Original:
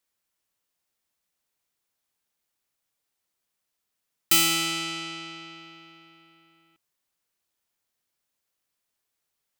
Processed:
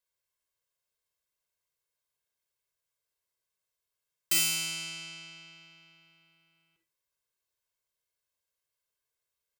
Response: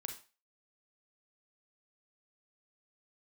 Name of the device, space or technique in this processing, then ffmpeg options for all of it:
microphone above a desk: -filter_complex "[0:a]aecho=1:1:1.9:0.78[link_01];[1:a]atrim=start_sample=2205[link_02];[link_01][link_02]afir=irnorm=-1:irlink=0,volume=-6dB"

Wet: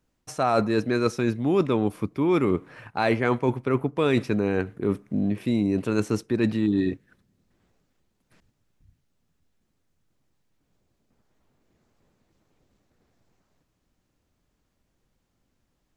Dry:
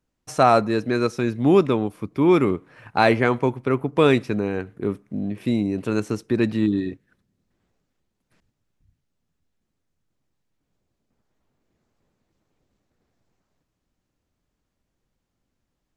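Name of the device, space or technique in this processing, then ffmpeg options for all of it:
compression on the reversed sound: -af "areverse,acompressor=threshold=-23dB:ratio=6,areverse,volume=4dB"

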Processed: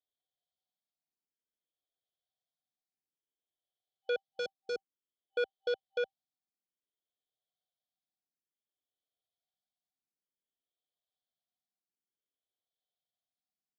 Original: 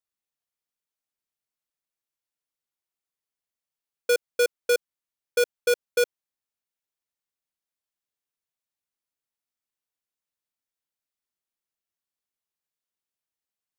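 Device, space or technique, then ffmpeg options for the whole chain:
barber-pole phaser into a guitar amplifier: -filter_complex "[0:a]afftfilt=real='re*(1-between(b*sr/4096,780,3000))':imag='im*(1-between(b*sr/4096,780,3000))':win_size=4096:overlap=0.75,asplit=2[link_01][link_02];[link_02]afreqshift=0.56[link_03];[link_01][link_03]amix=inputs=2:normalize=1,asoftclip=type=tanh:threshold=-29dB,highpass=89,equalizer=frequency=780:width_type=q:width=4:gain=9,equalizer=frequency=1500:width_type=q:width=4:gain=4,equalizer=frequency=3300:width_type=q:width=4:gain=5,lowpass=frequency=4300:width=0.5412,lowpass=frequency=4300:width=1.3066"

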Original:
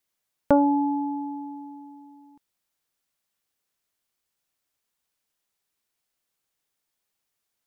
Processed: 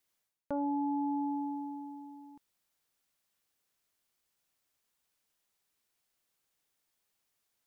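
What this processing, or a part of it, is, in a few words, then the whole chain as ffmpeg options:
compression on the reversed sound: -af "areverse,acompressor=threshold=-31dB:ratio=12,areverse"

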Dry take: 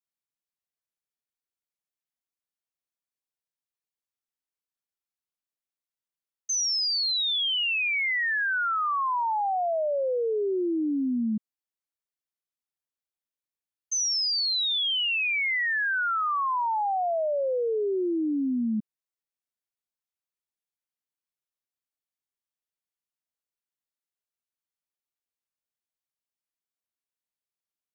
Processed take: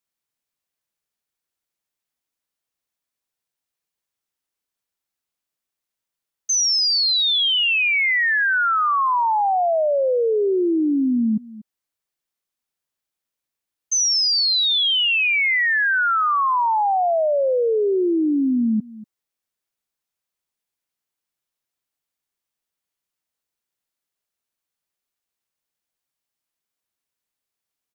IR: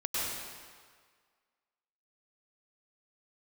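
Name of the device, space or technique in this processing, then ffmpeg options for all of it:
ducked delay: -filter_complex "[0:a]asplit=3[link_01][link_02][link_03];[link_02]adelay=238,volume=-8.5dB[link_04];[link_03]apad=whole_len=1242969[link_05];[link_04][link_05]sidechaincompress=threshold=-40dB:ratio=8:attack=16:release=593[link_06];[link_01][link_06]amix=inputs=2:normalize=0,volume=7.5dB"

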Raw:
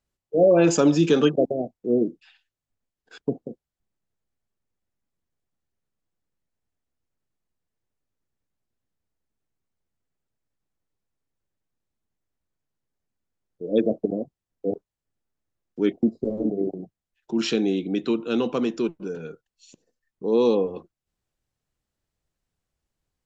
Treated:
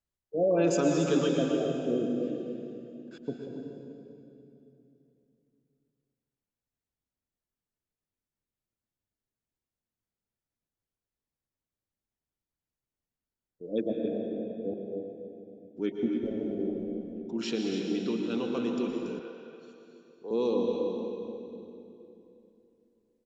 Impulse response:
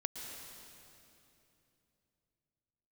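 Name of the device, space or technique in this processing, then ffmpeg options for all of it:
cave: -filter_complex "[0:a]aecho=1:1:281:0.316[link_01];[1:a]atrim=start_sample=2205[link_02];[link_01][link_02]afir=irnorm=-1:irlink=0,asettb=1/sr,asplit=3[link_03][link_04][link_05];[link_03]atrim=end=19.194[link_06];[link_04]atrim=start=19.19:end=20.31,asetpts=PTS-STARTPTS,afade=type=in:duration=0.004:curve=qsin,afade=type=out:start_time=1.116:duration=0.004:curve=qsin,acrossover=split=410 4900:gain=0.178 1 0.0794[link_07][link_08][link_09];[link_07][link_08][link_09]amix=inputs=3:normalize=0[link_10];[link_05]atrim=start=20.306[link_11];[link_06][link_10]acrossfade=duration=0.004:curve1=hsin:curve2=qsin[link_12];[link_12][link_11]acrossfade=duration=0.004:curve1=qsin:curve2=hsin,volume=-7.5dB"

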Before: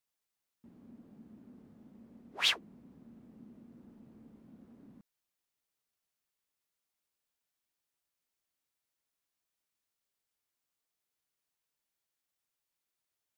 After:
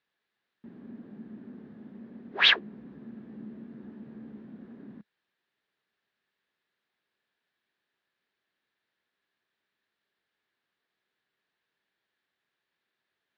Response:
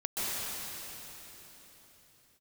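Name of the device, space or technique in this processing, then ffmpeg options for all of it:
guitar cabinet: -filter_complex "[0:a]highpass=79,equalizer=frequency=87:width_type=q:width=4:gain=-8,equalizer=frequency=210:width_type=q:width=4:gain=4,equalizer=frequency=390:width_type=q:width=4:gain=6,equalizer=frequency=1700:width_type=q:width=4:gain=10,equalizer=frequency=3800:width_type=q:width=4:gain=3,lowpass=frequency=3900:width=0.5412,lowpass=frequency=3900:width=1.3066,asettb=1/sr,asplit=3[link_01][link_02][link_03];[link_01]atrim=end=2.564[link_04];[link_02]atrim=start=2.56:end=4.46,asetpts=PTS-STARTPTS,afade=type=in:duration=0.004:curve=qsin,afade=type=out:start_time=1.896:duration=0.004:curve=qsin,asplit=2[link_05][link_06];[link_06]adelay=14,volume=-7dB[link_07];[link_05][link_07]amix=inputs=2:normalize=0,atrim=end_sample=83790[link_08];[link_03]atrim=start=4.456[link_09];[link_04][link_08]acrossfade=duration=0.004:curve1=hsin:curve2=qsin[link_10];[link_10][link_09]acrossfade=duration=0.004:curve1=qsin:curve2=hsin,volume=7.5dB"

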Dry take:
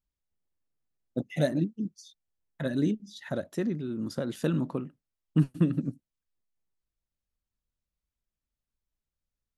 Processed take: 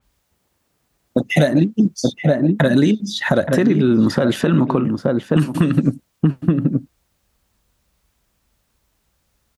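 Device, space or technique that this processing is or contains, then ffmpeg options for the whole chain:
mastering chain: -filter_complex "[0:a]asettb=1/sr,asplit=3[link_01][link_02][link_03];[link_01]atrim=end=4.414[link_04];[link_02]atrim=start=4.41:end=4.85,asetpts=PTS-STARTPTS,afade=type=in:duration=0.004:curve=qsin,afade=type=out:start_time=0.436:duration=0.004:curve=qsin,aemphasis=mode=reproduction:type=50kf[link_05];[link_03]atrim=start=4.846[link_06];[link_04][link_05]acrossfade=duration=0.004:curve1=hsin:curve2=qsin[link_07];[link_07][link_06]acrossfade=duration=0.004:curve1=qsin:curve2=hsin,highpass=44,equalizer=frequency=860:width_type=o:width=1.7:gain=3.5,asplit=2[link_08][link_09];[link_09]adelay=874.6,volume=-10dB,highshelf=frequency=4000:gain=-19.7[link_10];[link_08][link_10]amix=inputs=2:normalize=0,acrossover=split=1200|3900[link_11][link_12][link_13];[link_11]acompressor=threshold=-33dB:ratio=4[link_14];[link_12]acompressor=threshold=-46dB:ratio=4[link_15];[link_13]acompressor=threshold=-54dB:ratio=4[link_16];[link_14][link_15][link_16]amix=inputs=3:normalize=0,acompressor=threshold=-36dB:ratio=2.5,alimiter=level_in=27dB:limit=-1dB:release=50:level=0:latency=1,adynamicequalizer=threshold=0.0178:dfrequency=4000:dqfactor=0.7:tfrequency=4000:tqfactor=0.7:attack=5:release=100:ratio=0.375:range=3:mode=cutabove:tftype=highshelf,volume=-2.5dB"

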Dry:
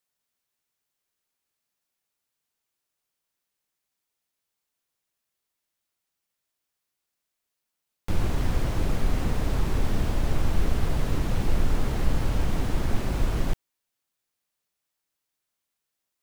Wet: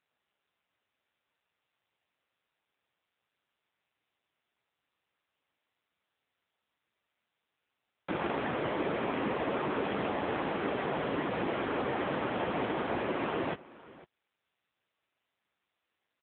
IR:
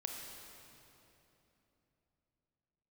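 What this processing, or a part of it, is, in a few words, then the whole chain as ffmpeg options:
satellite phone: -af "highpass=350,lowpass=3000,aecho=1:1:505:0.1,volume=7dB" -ar 8000 -c:a libopencore_amrnb -b:a 6700

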